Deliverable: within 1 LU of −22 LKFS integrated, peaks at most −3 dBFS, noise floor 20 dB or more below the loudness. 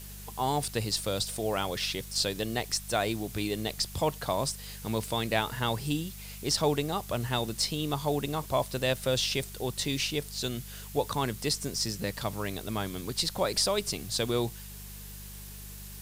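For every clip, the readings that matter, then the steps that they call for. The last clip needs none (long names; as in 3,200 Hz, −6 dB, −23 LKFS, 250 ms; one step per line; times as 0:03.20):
mains hum 50 Hz; hum harmonics up to 200 Hz; level of the hum −44 dBFS; background noise floor −44 dBFS; target noise floor −51 dBFS; integrated loudness −30.5 LKFS; sample peak −11.5 dBFS; target loudness −22.0 LKFS
→ hum removal 50 Hz, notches 4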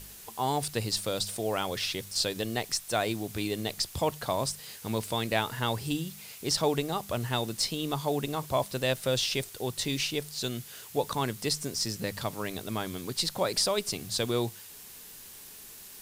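mains hum none found; background noise floor −48 dBFS; target noise floor −51 dBFS
→ noise reduction from a noise print 6 dB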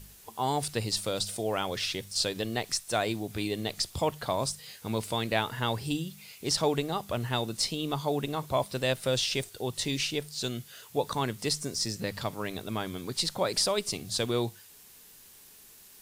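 background noise floor −54 dBFS; integrated loudness −31.0 LKFS; sample peak −11.0 dBFS; target loudness −22.0 LKFS
→ level +9 dB
brickwall limiter −3 dBFS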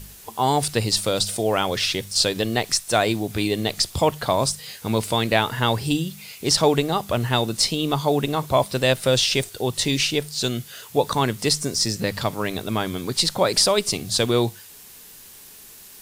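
integrated loudness −22.0 LKFS; sample peak −3.0 dBFS; background noise floor −45 dBFS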